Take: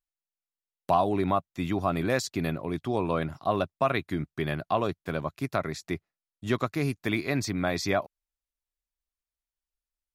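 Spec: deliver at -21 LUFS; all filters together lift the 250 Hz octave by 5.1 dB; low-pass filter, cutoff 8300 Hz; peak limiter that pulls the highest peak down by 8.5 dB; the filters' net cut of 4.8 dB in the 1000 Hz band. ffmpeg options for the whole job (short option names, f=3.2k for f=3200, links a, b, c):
-af "lowpass=8.3k,equalizer=f=250:t=o:g=7,equalizer=f=1k:t=o:g=-7.5,volume=9.5dB,alimiter=limit=-9dB:level=0:latency=1"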